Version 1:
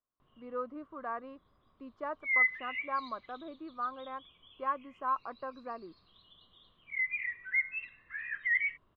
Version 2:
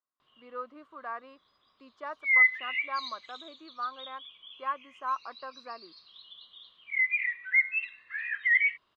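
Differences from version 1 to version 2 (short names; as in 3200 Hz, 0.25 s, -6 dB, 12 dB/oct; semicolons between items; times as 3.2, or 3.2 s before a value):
background: remove air absorption 180 m; master: add tilt +4 dB/oct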